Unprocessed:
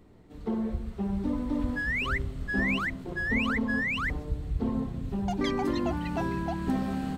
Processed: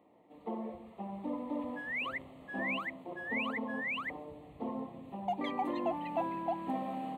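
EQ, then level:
high-pass with resonance 400 Hz, resonance Q 4.2
high-shelf EQ 2,500 Hz −11 dB
phaser with its sweep stopped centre 1,500 Hz, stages 6
0.0 dB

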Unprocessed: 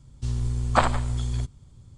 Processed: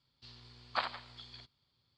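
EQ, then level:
resonant band-pass 4,600 Hz, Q 6.2
high-frequency loss of the air 470 metres
+17.0 dB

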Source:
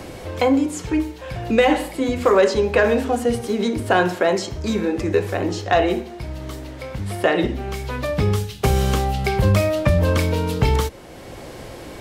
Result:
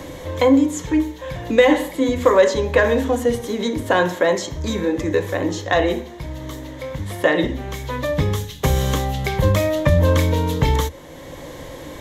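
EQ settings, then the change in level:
EQ curve with evenly spaced ripples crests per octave 1.1, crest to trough 8 dB
0.0 dB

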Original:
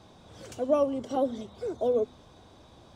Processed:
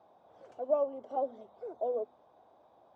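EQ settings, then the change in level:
resonant band-pass 720 Hz, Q 2.3
−1.5 dB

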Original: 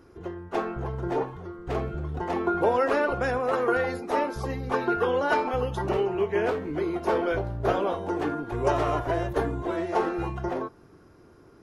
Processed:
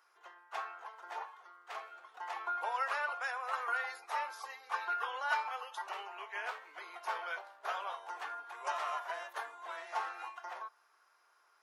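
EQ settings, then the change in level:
high-pass filter 890 Hz 24 dB per octave
−5.5 dB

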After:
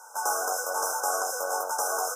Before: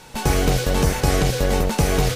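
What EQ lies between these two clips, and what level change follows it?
high-pass filter 680 Hz 24 dB per octave
linear-phase brick-wall band-stop 1,600–5,100 Hz
notch filter 5,500 Hz, Q 14
0.0 dB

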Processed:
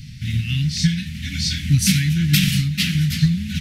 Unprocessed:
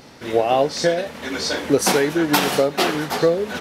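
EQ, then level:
inverse Chebyshev band-stop filter 440–880 Hz, stop band 70 dB
bass and treble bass +15 dB, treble −3 dB
+4.0 dB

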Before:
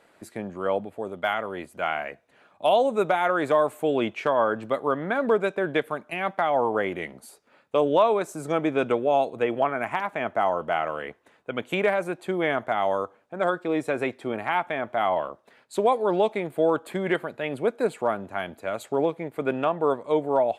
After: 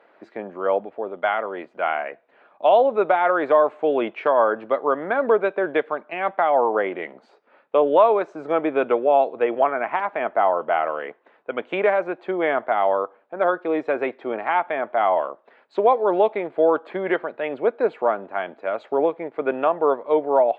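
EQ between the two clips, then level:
high-pass filter 400 Hz 12 dB per octave
high-frequency loss of the air 200 metres
head-to-tape spacing loss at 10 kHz 21 dB
+7.5 dB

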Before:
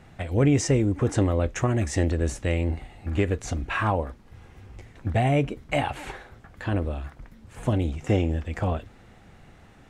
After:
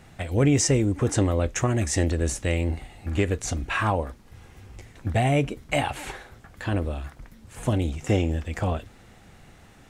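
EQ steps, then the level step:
high-shelf EQ 4,400 Hz +9.5 dB
0.0 dB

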